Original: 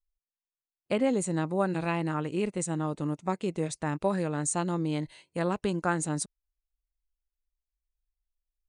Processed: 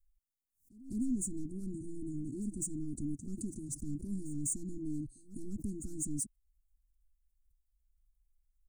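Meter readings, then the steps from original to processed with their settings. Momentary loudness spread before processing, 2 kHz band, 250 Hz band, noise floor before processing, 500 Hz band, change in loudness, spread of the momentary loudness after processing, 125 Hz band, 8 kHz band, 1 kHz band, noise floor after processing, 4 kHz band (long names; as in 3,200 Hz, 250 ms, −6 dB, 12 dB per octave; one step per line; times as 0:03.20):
4 LU, below −40 dB, −7.0 dB, below −85 dBFS, −20.5 dB, −9.0 dB, 7 LU, −10.5 dB, −3.0 dB, below −40 dB, −83 dBFS, below −20 dB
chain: gain on a spectral selection 0:01.70–0:02.26, 470–5,200 Hz −15 dB
in parallel at −3 dB: brickwall limiter −23.5 dBFS, peak gain reduction 9 dB
on the sum: soft clipping −25.5 dBFS, distortion −10 dB
inverse Chebyshev band-stop filter 520–3,400 Hz, stop band 50 dB
high-shelf EQ 2,800 Hz −6 dB
comb filter 3 ms, depth 93%
echo ahead of the sound 203 ms −20.5 dB
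background raised ahead of every attack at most 140 dB per second
level +1 dB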